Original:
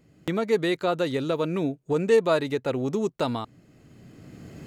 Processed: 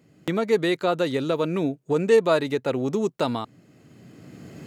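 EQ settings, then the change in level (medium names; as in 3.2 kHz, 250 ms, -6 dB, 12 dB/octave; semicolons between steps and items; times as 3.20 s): high-pass 110 Hz; +2.0 dB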